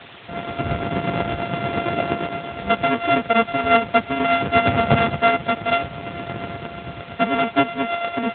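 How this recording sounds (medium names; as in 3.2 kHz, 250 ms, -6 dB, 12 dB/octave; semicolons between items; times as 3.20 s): a buzz of ramps at a fixed pitch in blocks of 64 samples; tremolo triangle 8.6 Hz, depth 55%; a quantiser's noise floor 6-bit, dither triangular; AMR-NB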